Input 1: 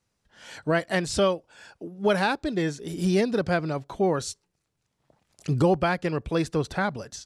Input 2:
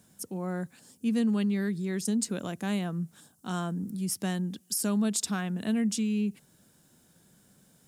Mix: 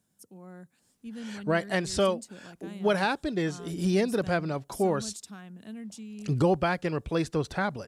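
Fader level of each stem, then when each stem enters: −2.5, −13.5 decibels; 0.80, 0.00 seconds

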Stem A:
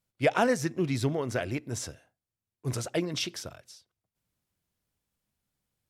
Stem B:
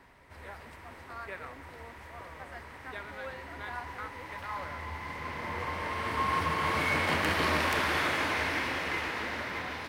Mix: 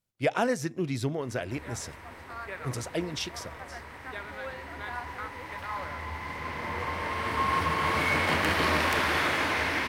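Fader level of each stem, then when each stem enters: −2.0, +2.5 decibels; 0.00, 1.20 seconds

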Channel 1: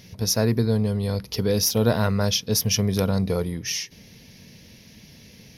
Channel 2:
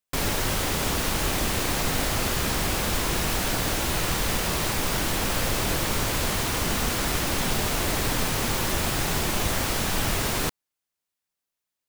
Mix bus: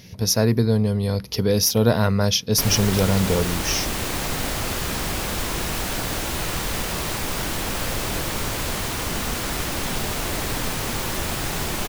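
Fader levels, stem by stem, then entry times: +2.5, −0.5 decibels; 0.00, 2.45 seconds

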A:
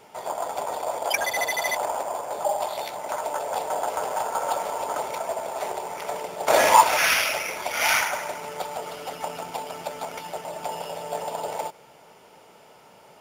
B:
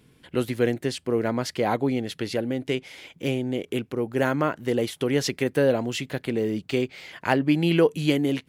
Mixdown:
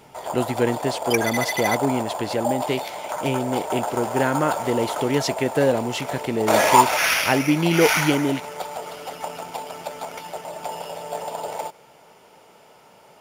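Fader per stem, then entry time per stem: +0.5, +1.5 decibels; 0.00, 0.00 seconds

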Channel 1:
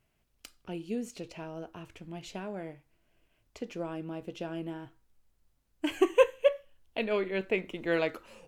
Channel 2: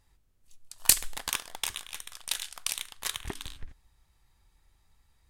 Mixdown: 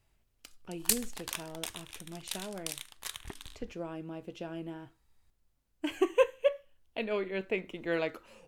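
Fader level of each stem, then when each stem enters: −3.0, −7.0 decibels; 0.00, 0.00 seconds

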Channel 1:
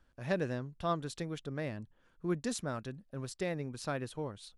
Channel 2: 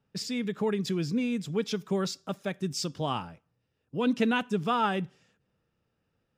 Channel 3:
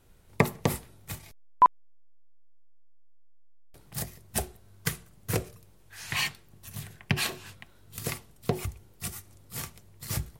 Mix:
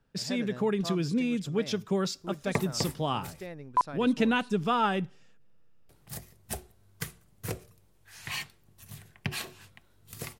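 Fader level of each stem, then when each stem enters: −6.0, +0.5, −6.5 decibels; 0.00, 0.00, 2.15 seconds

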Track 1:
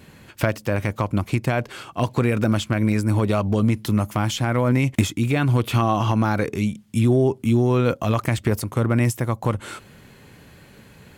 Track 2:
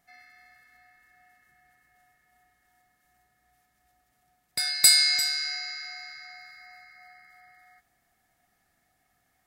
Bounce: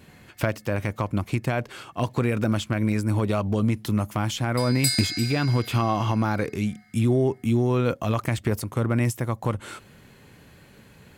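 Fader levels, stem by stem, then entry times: −3.5, −7.5 decibels; 0.00, 0.00 seconds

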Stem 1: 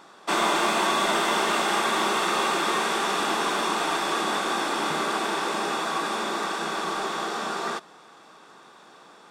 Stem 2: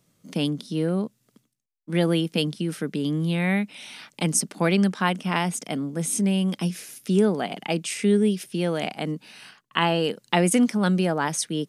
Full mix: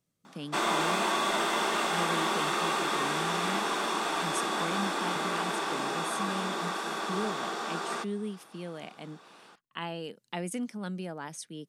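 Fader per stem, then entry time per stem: −5.0, −15.0 decibels; 0.25, 0.00 seconds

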